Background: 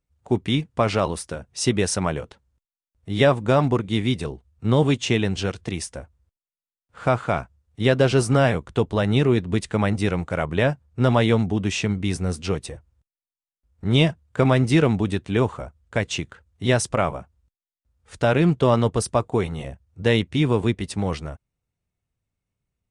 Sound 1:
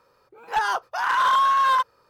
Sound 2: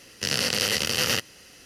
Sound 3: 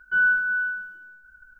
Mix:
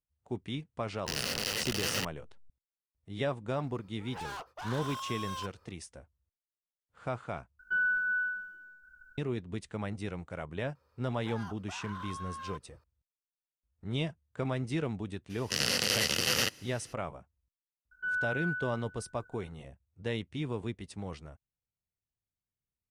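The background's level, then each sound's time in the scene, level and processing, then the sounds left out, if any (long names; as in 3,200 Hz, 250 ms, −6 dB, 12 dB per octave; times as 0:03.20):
background −15.5 dB
0:00.85: mix in 2 −9 dB + hold until the input has moved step −25.5 dBFS
0:03.64: mix in 1 −7.5 dB + soft clipping −32 dBFS
0:07.59: overwrite with 3 −6 dB + downward compressor 3 to 1, threshold −21 dBFS
0:10.75: mix in 1 −12 dB + downward compressor, threshold −31 dBFS
0:15.29: mix in 2 −4.5 dB, fades 0.02 s
0:17.91: mix in 3 −10 dB + downward compressor 1.5 to 1, threshold −25 dBFS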